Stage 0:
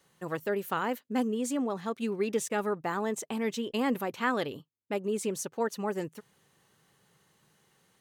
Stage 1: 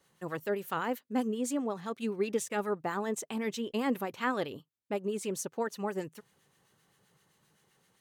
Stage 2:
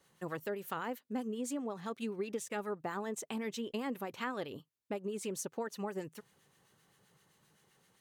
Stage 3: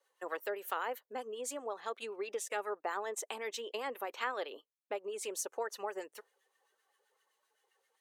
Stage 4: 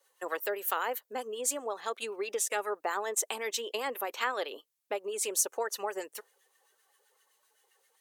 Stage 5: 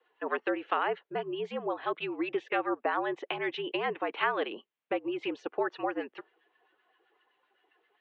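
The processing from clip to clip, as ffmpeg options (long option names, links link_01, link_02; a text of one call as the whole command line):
ffmpeg -i in.wav -filter_complex "[0:a]acrossover=split=1200[link_01][link_02];[link_01]aeval=exprs='val(0)*(1-0.5/2+0.5/2*cos(2*PI*7.7*n/s))':channel_layout=same[link_03];[link_02]aeval=exprs='val(0)*(1-0.5/2-0.5/2*cos(2*PI*7.7*n/s))':channel_layout=same[link_04];[link_03][link_04]amix=inputs=2:normalize=0" out.wav
ffmpeg -i in.wav -af "acompressor=threshold=-36dB:ratio=3" out.wav
ffmpeg -i in.wav -af "highpass=frequency=430:width=0.5412,highpass=frequency=430:width=1.3066,afftdn=noise_reduction=13:noise_floor=-65,volume=3dB" out.wav
ffmpeg -i in.wav -af "aemphasis=mode=production:type=cd,volume=4.5dB" out.wav
ffmpeg -i in.wav -af "highpass=frequency=200:width_type=q:width=0.5412,highpass=frequency=200:width_type=q:width=1.307,lowpass=frequency=3200:width_type=q:width=0.5176,lowpass=frequency=3200:width_type=q:width=0.7071,lowpass=frequency=3200:width_type=q:width=1.932,afreqshift=-66,volume=3dB" out.wav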